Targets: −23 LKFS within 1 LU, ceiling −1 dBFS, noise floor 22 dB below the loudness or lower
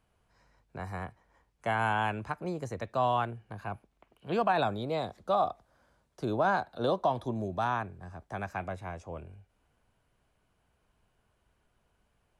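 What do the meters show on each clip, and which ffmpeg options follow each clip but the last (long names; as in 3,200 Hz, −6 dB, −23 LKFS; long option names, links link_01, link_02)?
integrated loudness −32.5 LKFS; sample peak −17.0 dBFS; target loudness −23.0 LKFS
→ -af "volume=9.5dB"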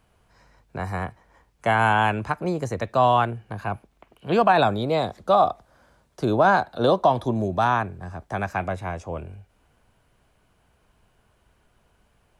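integrated loudness −23.0 LKFS; sample peak −7.5 dBFS; background noise floor −65 dBFS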